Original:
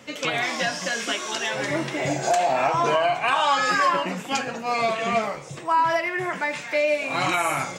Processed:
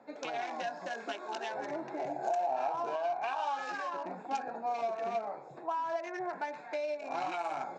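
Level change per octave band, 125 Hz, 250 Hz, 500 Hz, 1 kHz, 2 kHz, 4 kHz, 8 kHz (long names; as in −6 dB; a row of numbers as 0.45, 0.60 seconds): −23.0, −14.0, −11.0, −11.0, −17.5, −20.0, −23.0 decibels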